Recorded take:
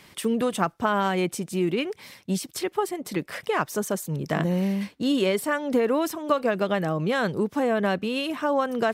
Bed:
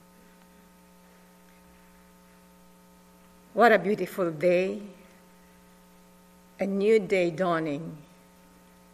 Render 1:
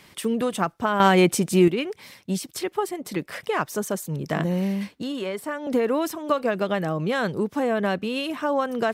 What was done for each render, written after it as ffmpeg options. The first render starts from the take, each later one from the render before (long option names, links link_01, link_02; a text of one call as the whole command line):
ffmpeg -i in.wav -filter_complex "[0:a]asettb=1/sr,asplit=3[link_01][link_02][link_03];[link_01]atrim=end=4.984[link_04];[link_02]atrim=start=4.98:end=5.67,asetpts=PTS-STARTPTS,afade=type=in:duration=0.004:curve=qsin,afade=type=out:start_time=0.686:duration=0.004:curve=qsin,acrossover=split=720|1800[link_05][link_06][link_07];[link_05]acompressor=threshold=-30dB:ratio=4[link_08];[link_06]acompressor=threshold=-33dB:ratio=4[link_09];[link_07]acompressor=threshold=-41dB:ratio=4[link_10];[link_08][link_09][link_10]amix=inputs=3:normalize=0[link_11];[link_03]atrim=start=5.666[link_12];[link_04][link_11]acrossfade=duration=0.004:curve1=hsin:curve2=qsin[link_13];[link_13][link_12]acrossfade=duration=0.004:curve1=qsin:curve2=hsin,asplit=3[link_14][link_15][link_16];[link_14]atrim=end=1.002[link_17];[link_15]atrim=start=0.998:end=1.682,asetpts=PTS-STARTPTS,volume=8dB[link_18];[link_16]atrim=start=1.678[link_19];[link_17][link_18]acrossfade=duration=0.004:curve1=hsin:curve2=hsin[link_20];[link_20][link_19]acrossfade=duration=0.004:curve1=hsin:curve2=hsin" out.wav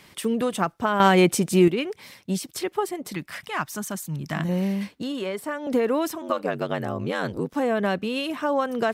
ffmpeg -i in.wav -filter_complex "[0:a]asettb=1/sr,asplit=3[link_01][link_02][link_03];[link_01]atrim=end=3.124[link_04];[link_02]atrim=start=3.12:end=4.49,asetpts=PTS-STARTPTS,afade=type=in:duration=0.004:curve=qsin,afade=type=out:start_time=1.366:duration=0.004:curve=qsin,equalizer=frequency=470:width=1.8:gain=-15[link_05];[link_03]atrim=start=4.486[link_06];[link_04][link_05]acrossfade=duration=0.004:curve1=hsin:curve2=qsin[link_07];[link_07][link_06]acrossfade=duration=0.004:curve1=qsin:curve2=hsin,asettb=1/sr,asplit=3[link_08][link_09][link_10];[link_08]atrim=end=6.214[link_11];[link_09]atrim=start=6.21:end=7.55,asetpts=PTS-STARTPTS,afade=type=in:duration=0.004:curve=qsin,afade=type=out:start_time=1.336:duration=0.004:curve=qsin,aeval=exprs='val(0)*sin(2*PI*47*n/s)':channel_layout=same[link_12];[link_10]atrim=start=7.546[link_13];[link_11][link_12]acrossfade=duration=0.004:curve1=hsin:curve2=qsin[link_14];[link_14][link_13]acrossfade=duration=0.004:curve1=qsin:curve2=hsin" out.wav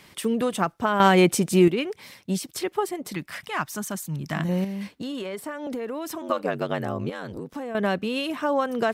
ffmpeg -i in.wav -filter_complex "[0:a]asettb=1/sr,asplit=3[link_01][link_02][link_03];[link_01]atrim=end=4.644[link_04];[link_02]atrim=start=4.64:end=6.13,asetpts=PTS-STARTPTS,afade=type=in:duration=0.004:curve=qsin,afade=type=out:start_time=1.486:duration=0.004:curve=qsin,acompressor=threshold=-28dB:ratio=6:attack=3.2:release=140:knee=1:detection=peak[link_05];[link_03]atrim=start=6.126[link_06];[link_04][link_05]acrossfade=duration=0.004:curve1=hsin:curve2=qsin[link_07];[link_07][link_06]acrossfade=duration=0.004:curve1=qsin:curve2=hsin,asettb=1/sr,asplit=3[link_08][link_09][link_10];[link_08]atrim=end=7.094[link_11];[link_09]atrim=start=7.09:end=7.75,asetpts=PTS-STARTPTS,afade=type=in:duration=0.004:curve=qsin,afade=type=out:start_time=0.656:duration=0.004:curve=qsin,acompressor=threshold=-30dB:ratio=6:attack=3.2:release=140:knee=1:detection=peak[link_12];[link_10]atrim=start=7.746[link_13];[link_11][link_12]acrossfade=duration=0.004:curve1=hsin:curve2=qsin[link_14];[link_14][link_13]acrossfade=duration=0.004:curve1=qsin:curve2=hsin" out.wav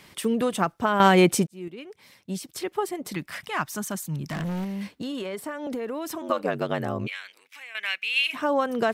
ffmpeg -i in.wav -filter_complex "[0:a]asettb=1/sr,asplit=3[link_01][link_02][link_03];[link_01]atrim=end=4.294[link_04];[link_02]atrim=start=4.29:end=4.91,asetpts=PTS-STARTPTS,afade=type=in:duration=0.004:curve=qsin,afade=type=out:start_time=0.616:duration=0.004:curve=qsin,asoftclip=type=hard:threshold=-27dB[link_05];[link_03]atrim=start=4.906[link_06];[link_04][link_05]acrossfade=duration=0.004:curve1=hsin:curve2=qsin[link_07];[link_07][link_06]acrossfade=duration=0.004:curve1=qsin:curve2=hsin,asplit=3[link_08][link_09][link_10];[link_08]afade=type=out:start_time=7.06:duration=0.02[link_11];[link_09]highpass=frequency=2300:width_type=q:width=5.5,afade=type=in:start_time=7.06:duration=0.02,afade=type=out:start_time=8.33:duration=0.02[link_12];[link_10]afade=type=in:start_time=8.33:duration=0.02[link_13];[link_11][link_12][link_13]amix=inputs=3:normalize=0,asplit=2[link_14][link_15];[link_14]atrim=end=1.47,asetpts=PTS-STARTPTS,afade=type=out:start_time=1.466:duration=0.004:curve=hsin[link_16];[link_15]atrim=start=1.47,asetpts=PTS-STARTPTS,afade=type=in:duration=1.61[link_17];[link_16][link_17]concat=n=2:v=0:a=1" out.wav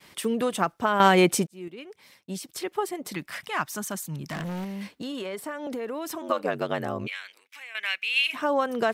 ffmpeg -i in.wav -af "agate=range=-33dB:threshold=-52dB:ratio=3:detection=peak,lowshelf=frequency=200:gain=-6.5" out.wav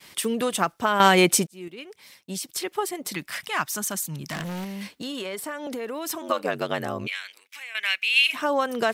ffmpeg -i in.wav -af "highshelf=frequency=2200:gain=7.5" out.wav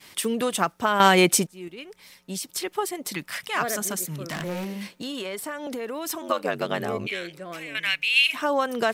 ffmpeg -i in.wav -i bed.wav -filter_complex "[1:a]volume=-12dB[link_01];[0:a][link_01]amix=inputs=2:normalize=0" out.wav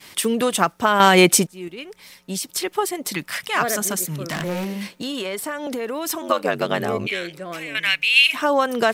ffmpeg -i in.wav -af "volume=5dB,alimiter=limit=-2dB:level=0:latency=1" out.wav